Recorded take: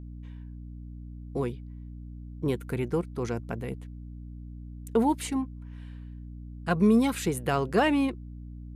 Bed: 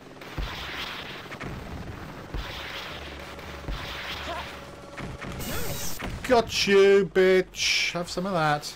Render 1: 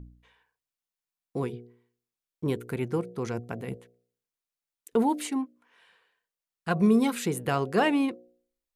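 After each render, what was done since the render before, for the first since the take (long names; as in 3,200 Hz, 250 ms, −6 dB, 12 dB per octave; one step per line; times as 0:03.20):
hum removal 60 Hz, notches 12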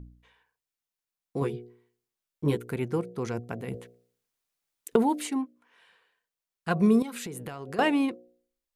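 0:01.40–0:02.58: double-tracking delay 14 ms −2.5 dB
0:03.74–0:04.96: clip gain +7 dB
0:07.02–0:07.79: downward compressor 16 to 1, threshold −33 dBFS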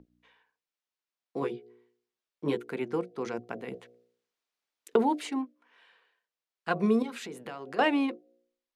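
three-way crossover with the lows and the highs turned down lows −18 dB, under 210 Hz, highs −14 dB, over 6,000 Hz
mains-hum notches 60/120/180/240/300/360/420/480/540 Hz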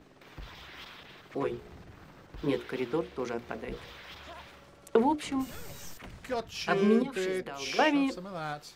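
mix in bed −13 dB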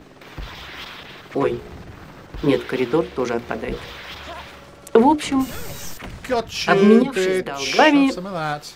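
level +12 dB
brickwall limiter −1 dBFS, peak gain reduction 2 dB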